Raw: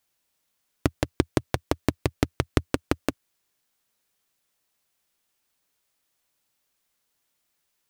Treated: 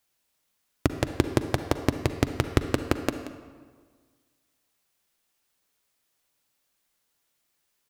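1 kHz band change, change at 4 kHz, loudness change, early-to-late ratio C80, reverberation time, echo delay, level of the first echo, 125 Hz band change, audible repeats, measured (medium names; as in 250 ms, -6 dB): +0.5 dB, +0.5 dB, +0.5 dB, 9.5 dB, 1.6 s, 180 ms, -15.5 dB, +1.0 dB, 1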